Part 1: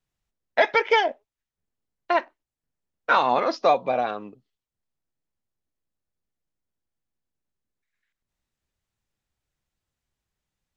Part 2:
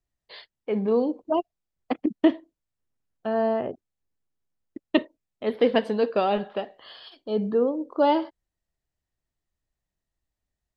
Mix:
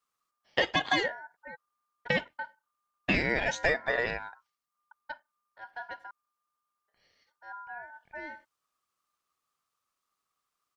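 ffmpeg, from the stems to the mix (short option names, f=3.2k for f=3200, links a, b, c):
-filter_complex "[0:a]highshelf=f=4.1k:g=6,volume=0.5dB[a];[1:a]bass=f=250:g=10,treble=f=4k:g=-4,adelay=150,volume=-20dB,asplit=3[b][c][d];[b]atrim=end=6.11,asetpts=PTS-STARTPTS,afade=t=out:st=6.106:d=0.004:c=hsin[e];[c]atrim=start=6.11:end=6.88,asetpts=PTS-STARTPTS,volume=0[f];[d]atrim=start=6.88,asetpts=PTS-STARTPTS,afade=t=in:d=0.004:c=hsin[g];[e][f][g]concat=n=3:v=0:a=1[h];[a][h]amix=inputs=2:normalize=0,aeval=exprs='val(0)*sin(2*PI*1200*n/s)':c=same,acompressor=threshold=-25dB:ratio=2.5"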